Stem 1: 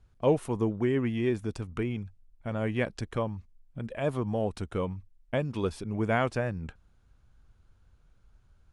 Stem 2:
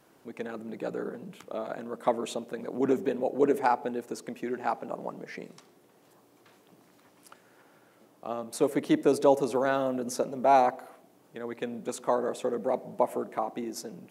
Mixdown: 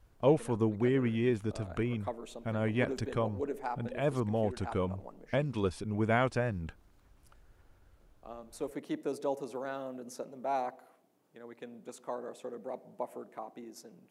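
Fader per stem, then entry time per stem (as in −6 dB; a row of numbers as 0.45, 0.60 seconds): −1.5, −12.0 decibels; 0.00, 0.00 seconds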